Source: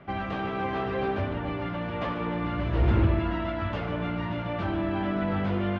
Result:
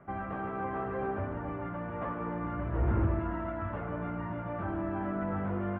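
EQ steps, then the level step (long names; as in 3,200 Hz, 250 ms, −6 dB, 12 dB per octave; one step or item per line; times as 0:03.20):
transistor ladder low-pass 1,900 Hz, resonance 25%
0.0 dB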